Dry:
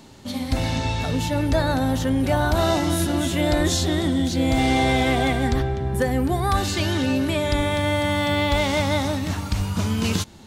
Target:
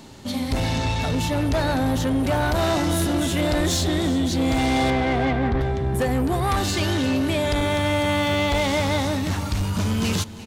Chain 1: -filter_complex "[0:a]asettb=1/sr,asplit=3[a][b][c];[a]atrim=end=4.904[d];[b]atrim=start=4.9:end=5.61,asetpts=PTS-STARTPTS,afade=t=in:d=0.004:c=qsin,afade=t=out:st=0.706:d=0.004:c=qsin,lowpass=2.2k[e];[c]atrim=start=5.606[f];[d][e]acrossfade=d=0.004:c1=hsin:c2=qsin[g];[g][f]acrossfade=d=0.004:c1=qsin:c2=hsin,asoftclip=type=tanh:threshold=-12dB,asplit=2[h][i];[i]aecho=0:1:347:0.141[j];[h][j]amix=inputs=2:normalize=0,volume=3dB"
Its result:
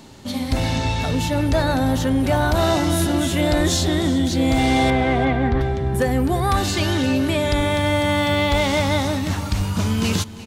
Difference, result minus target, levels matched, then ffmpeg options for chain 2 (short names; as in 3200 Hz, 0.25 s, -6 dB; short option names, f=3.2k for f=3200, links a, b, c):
soft clip: distortion -10 dB
-filter_complex "[0:a]asettb=1/sr,asplit=3[a][b][c];[a]atrim=end=4.904[d];[b]atrim=start=4.9:end=5.61,asetpts=PTS-STARTPTS,afade=t=in:d=0.004:c=qsin,afade=t=out:st=0.706:d=0.004:c=qsin,lowpass=2.2k[e];[c]atrim=start=5.606[f];[d][e]acrossfade=d=0.004:c1=hsin:c2=qsin[g];[g][f]acrossfade=d=0.004:c1=qsin:c2=hsin,asoftclip=type=tanh:threshold=-20dB,asplit=2[h][i];[i]aecho=0:1:347:0.141[j];[h][j]amix=inputs=2:normalize=0,volume=3dB"